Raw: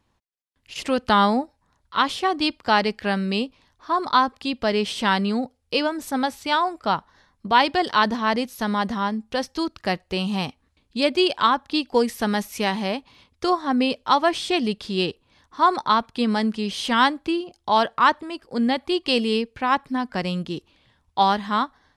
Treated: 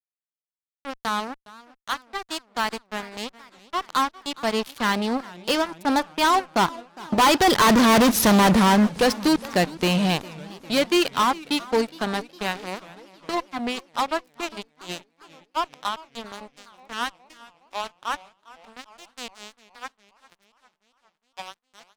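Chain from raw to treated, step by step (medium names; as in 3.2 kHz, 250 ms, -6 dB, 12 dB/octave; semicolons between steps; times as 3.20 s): Doppler pass-by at 8.11 s, 15 m/s, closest 4.1 m; fuzz box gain 38 dB, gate -48 dBFS; modulated delay 409 ms, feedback 63%, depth 195 cents, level -20 dB; trim -1 dB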